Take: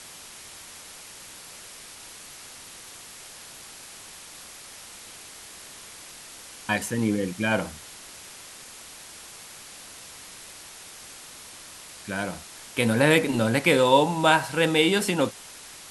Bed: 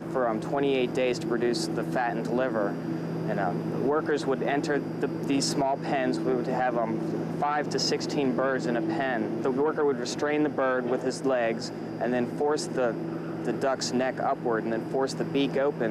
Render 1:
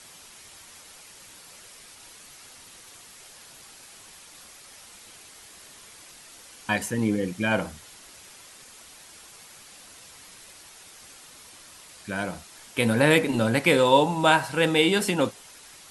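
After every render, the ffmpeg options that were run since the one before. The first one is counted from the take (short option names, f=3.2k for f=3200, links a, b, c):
-af "afftdn=nr=6:nf=-45"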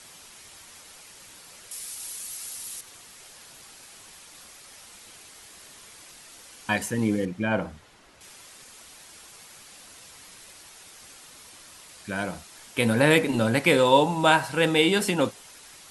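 -filter_complex "[0:a]asettb=1/sr,asplit=3[a][b][c];[a]atrim=end=1.714[d];[b]atrim=start=1.71:end=2.81,asetpts=PTS-STARTPTS,afade=t=in:d=0.004:c=qsin,afade=t=out:st=1.096:d=0.004:c=qsin,aemphasis=mode=production:type=75fm[e];[c]atrim=start=2.806[f];[d][e]acrossfade=d=0.004:c1=hsin:c2=qsin[g];[g][f]acrossfade=d=0.004:c1=qsin:c2=hsin,asettb=1/sr,asplit=3[h][i][j];[h]atrim=end=7.254[k];[i]atrim=start=7.25:end=8.21,asetpts=PTS-STARTPTS,afade=t=in:d=0.004:c=qsin,afade=t=out:st=0.956:d=0.004:c=qsin,lowpass=f=1.6k:p=1[l];[j]atrim=start=8.206[m];[k][l]acrossfade=d=0.004:c1=hsin:c2=qsin[n];[n][m]acrossfade=d=0.004:c1=qsin:c2=hsin"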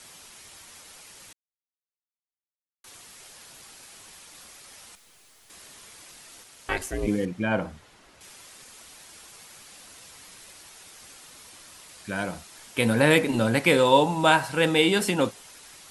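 -filter_complex "[0:a]asettb=1/sr,asplit=3[a][b][c];[a]atrim=end=4.954[d];[b]atrim=start=4.95:end=5.5,asetpts=PTS-STARTPTS,afade=t=in:d=0.004:c=qsin,afade=t=out:st=0.546:d=0.004:c=qsin,aeval=exprs='(tanh(562*val(0)+0.65)-tanh(0.65))/562':c=same[e];[c]atrim=start=5.496[f];[d][e]acrossfade=d=0.004:c1=hsin:c2=qsin[g];[g][f]acrossfade=d=0.004:c1=qsin:c2=hsin,asplit=3[h][i][j];[h]afade=t=out:st=6.43:d=0.02[k];[i]aeval=exprs='val(0)*sin(2*PI*180*n/s)':c=same,afade=t=in:st=6.43:d=0.02,afade=t=out:st=7.06:d=0.02[l];[j]afade=t=in:st=7.06:d=0.02[m];[k][l][m]amix=inputs=3:normalize=0,asplit=3[n][o][p];[n]atrim=end=1.33,asetpts=PTS-STARTPTS,afade=t=out:st=1.326:d=0.004:c=hsin[q];[o]atrim=start=1.33:end=2.84,asetpts=PTS-STARTPTS,volume=0[r];[p]atrim=start=2.84,asetpts=PTS-STARTPTS,afade=t=in:d=0.004:c=hsin[s];[q][r][s]concat=n=3:v=0:a=1"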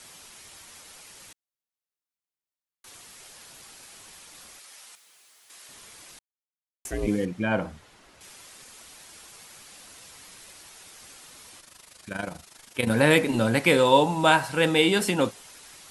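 -filter_complex "[0:a]asettb=1/sr,asplit=3[a][b][c];[a]atrim=end=4.594[d];[b]atrim=start=4.59:end=5.69,asetpts=PTS-STARTPTS,afade=t=in:d=0.004:c=qsin,afade=t=out:st=1.096:d=0.004:c=qsin,highpass=f=840:p=1[e];[c]atrim=start=5.686[f];[d][e]acrossfade=d=0.004:c1=hsin:c2=qsin[g];[g][f]acrossfade=d=0.004:c1=qsin:c2=hsin,asettb=1/sr,asplit=3[h][i][j];[h]atrim=end=11.604[k];[i]atrim=start=11.6:end=12.9,asetpts=PTS-STARTPTS,afade=t=in:d=0.004:c=qsin,afade=t=out:st=1.296:d=0.004:c=qsin,tremolo=f=25:d=0.75[l];[j]atrim=start=12.896[m];[k][l]acrossfade=d=0.004:c1=hsin:c2=qsin[n];[n][m]acrossfade=d=0.004:c1=qsin:c2=hsin,asplit=3[o][p][q];[o]atrim=end=6.19,asetpts=PTS-STARTPTS,afade=t=out:st=6.186:d=0.004:c=hsin[r];[p]atrim=start=6.19:end=6.85,asetpts=PTS-STARTPTS,volume=0[s];[q]atrim=start=6.85,asetpts=PTS-STARTPTS,afade=t=in:d=0.004:c=hsin[t];[r][s][t]concat=n=3:v=0:a=1"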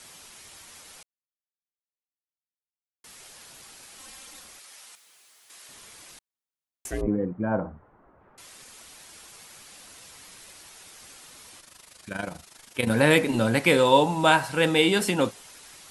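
-filter_complex "[0:a]asettb=1/sr,asplit=3[a][b][c];[a]atrim=end=3.984[d];[b]atrim=start=3.98:end=4.4,asetpts=PTS-STARTPTS,afade=t=in:d=0.004:c=qsin,afade=t=out:st=0.416:d=0.004:c=qsin,aecho=1:1:3.8:0.85,atrim=end_sample=18522[e];[c]atrim=start=4.396[f];[d][e]acrossfade=d=0.004:c1=hsin:c2=qsin[g];[g][f]acrossfade=d=0.004:c1=qsin:c2=hsin,asettb=1/sr,asplit=3[h][i][j];[h]atrim=end=7.014[k];[i]atrim=start=7.01:end=8.38,asetpts=PTS-STARTPTS,afade=t=in:d=0.004:c=qsin,afade=t=out:st=1.366:d=0.004:c=qsin,lowpass=f=1.3k:w=0.5412,lowpass=f=1.3k:w=1.3066[l];[j]atrim=start=8.376[m];[k][l]acrossfade=d=0.004:c1=hsin:c2=qsin[n];[n][m]acrossfade=d=0.004:c1=qsin:c2=hsin,asplit=3[o][p][q];[o]atrim=end=1.03,asetpts=PTS-STARTPTS,afade=t=out:st=1.026:d=0.004:c=hsin[r];[p]atrim=start=1.03:end=3.04,asetpts=PTS-STARTPTS,volume=0[s];[q]atrim=start=3.04,asetpts=PTS-STARTPTS,afade=t=in:d=0.004:c=hsin[t];[r][s][t]concat=n=3:v=0:a=1"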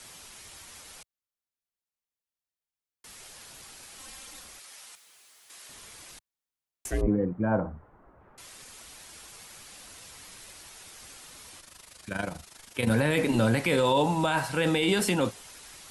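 -filter_complex "[0:a]acrossover=split=100[a][b];[a]acontrast=38[c];[b]alimiter=limit=-15.5dB:level=0:latency=1:release=16[d];[c][d]amix=inputs=2:normalize=0"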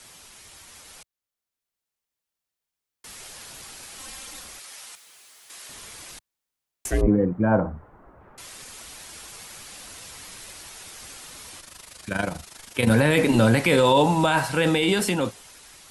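-af "dynaudnorm=f=200:g=13:m=6dB"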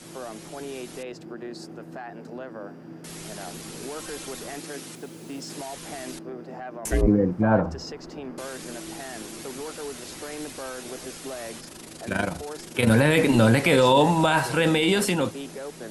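-filter_complex "[1:a]volume=-11dB[a];[0:a][a]amix=inputs=2:normalize=0"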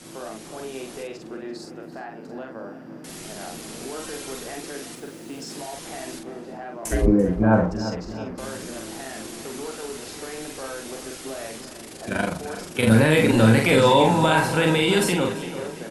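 -filter_complex "[0:a]asplit=2[a][b];[b]adelay=45,volume=-4dB[c];[a][c]amix=inputs=2:normalize=0,asplit=2[d][e];[e]adelay=340,lowpass=f=3.6k:p=1,volume=-12dB,asplit=2[f][g];[g]adelay=340,lowpass=f=3.6k:p=1,volume=0.52,asplit=2[h][i];[i]adelay=340,lowpass=f=3.6k:p=1,volume=0.52,asplit=2[j][k];[k]adelay=340,lowpass=f=3.6k:p=1,volume=0.52,asplit=2[l][m];[m]adelay=340,lowpass=f=3.6k:p=1,volume=0.52[n];[d][f][h][j][l][n]amix=inputs=6:normalize=0"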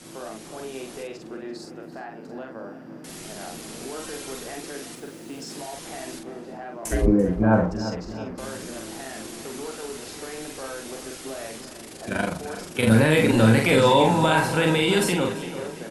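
-af "volume=-1dB"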